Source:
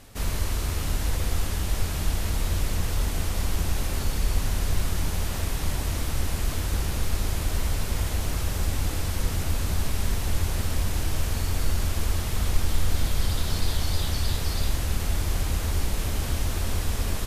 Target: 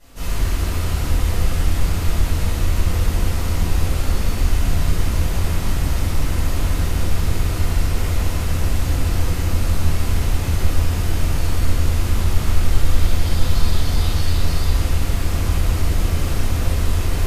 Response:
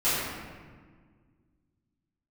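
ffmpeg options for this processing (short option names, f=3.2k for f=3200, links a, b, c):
-filter_complex "[1:a]atrim=start_sample=2205[a];[0:a][a]afir=irnorm=-1:irlink=0,volume=-8.5dB"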